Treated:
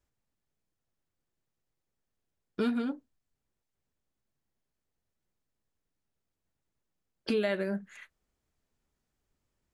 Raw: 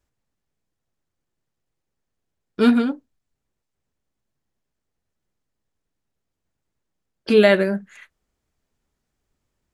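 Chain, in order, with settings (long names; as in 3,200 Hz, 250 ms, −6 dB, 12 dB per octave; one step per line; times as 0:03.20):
downward compressor 4 to 1, threshold −23 dBFS, peak gain reduction 12 dB
level −5 dB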